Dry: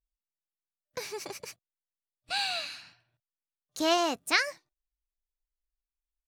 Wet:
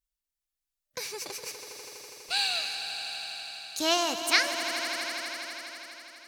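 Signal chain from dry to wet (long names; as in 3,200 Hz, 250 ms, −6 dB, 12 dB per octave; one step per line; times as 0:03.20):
high-shelf EQ 2,100 Hz +9 dB
echo that builds up and dies away 82 ms, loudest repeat 5, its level −13 dB
level −3 dB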